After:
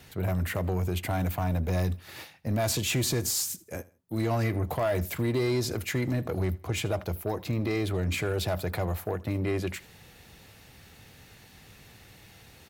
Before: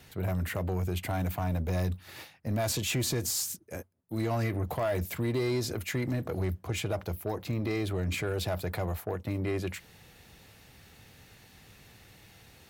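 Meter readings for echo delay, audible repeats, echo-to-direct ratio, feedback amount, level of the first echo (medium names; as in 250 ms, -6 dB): 80 ms, 2, -21.0 dB, 30%, -21.5 dB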